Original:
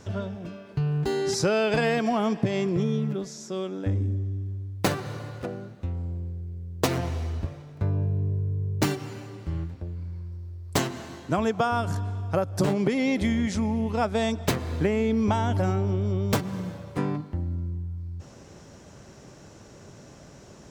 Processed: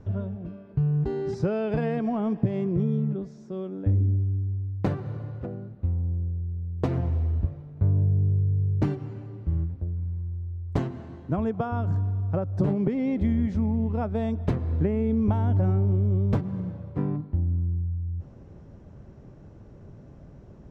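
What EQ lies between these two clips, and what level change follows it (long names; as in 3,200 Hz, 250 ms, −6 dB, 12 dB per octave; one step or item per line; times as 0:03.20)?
low-pass filter 2,800 Hz 6 dB per octave
spectral tilt −3.5 dB per octave
−7.5 dB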